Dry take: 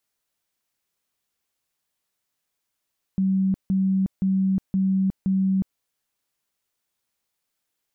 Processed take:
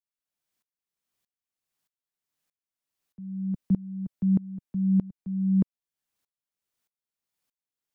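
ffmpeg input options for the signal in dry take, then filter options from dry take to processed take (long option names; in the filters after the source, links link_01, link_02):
-f lavfi -i "aevalsrc='0.126*sin(2*PI*191*mod(t,0.52))*lt(mod(t,0.52),69/191)':duration=2.6:sample_rate=44100"
-filter_complex "[0:a]acrossover=split=160|190[link_01][link_02][link_03];[link_02]acontrast=75[link_04];[link_01][link_04][link_03]amix=inputs=3:normalize=0,aeval=exprs='val(0)*pow(10,-24*if(lt(mod(-1.6*n/s,1),2*abs(-1.6)/1000),1-mod(-1.6*n/s,1)/(2*abs(-1.6)/1000),(mod(-1.6*n/s,1)-2*abs(-1.6)/1000)/(1-2*abs(-1.6)/1000))/20)':channel_layout=same"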